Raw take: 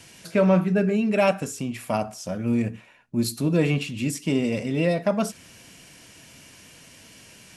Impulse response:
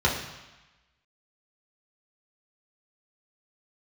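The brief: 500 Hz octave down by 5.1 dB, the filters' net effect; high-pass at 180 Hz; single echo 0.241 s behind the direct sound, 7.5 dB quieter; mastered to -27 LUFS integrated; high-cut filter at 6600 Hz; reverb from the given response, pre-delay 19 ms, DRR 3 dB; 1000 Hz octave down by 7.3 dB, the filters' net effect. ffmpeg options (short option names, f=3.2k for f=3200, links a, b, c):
-filter_complex "[0:a]highpass=180,lowpass=6.6k,equalizer=f=500:t=o:g=-3.5,equalizer=f=1k:t=o:g=-9,aecho=1:1:241:0.422,asplit=2[a][b];[1:a]atrim=start_sample=2205,adelay=19[c];[b][c]afir=irnorm=-1:irlink=0,volume=-18dB[d];[a][d]amix=inputs=2:normalize=0,volume=-2dB"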